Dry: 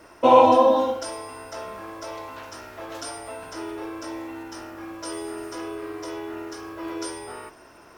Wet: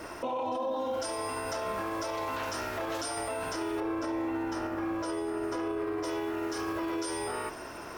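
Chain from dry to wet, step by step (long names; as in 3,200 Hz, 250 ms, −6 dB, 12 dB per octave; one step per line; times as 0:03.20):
0:03.80–0:06.04: high-shelf EQ 2,700 Hz −11.5 dB
brickwall limiter −33 dBFS, peak gain reduction 31.5 dB
level +7.5 dB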